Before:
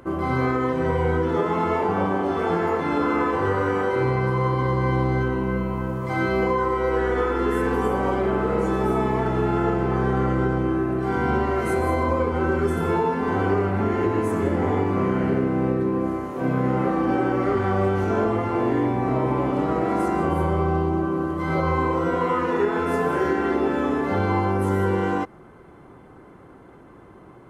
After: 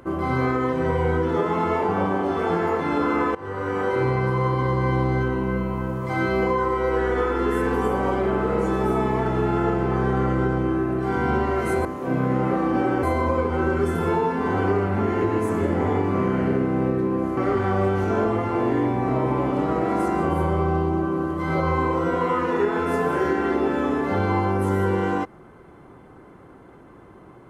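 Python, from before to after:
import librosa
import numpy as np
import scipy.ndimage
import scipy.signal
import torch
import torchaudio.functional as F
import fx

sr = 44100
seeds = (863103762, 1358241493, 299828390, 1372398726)

y = fx.edit(x, sr, fx.fade_in_from(start_s=3.35, length_s=0.54, floor_db=-19.0),
    fx.move(start_s=16.19, length_s=1.18, to_s=11.85), tone=tone)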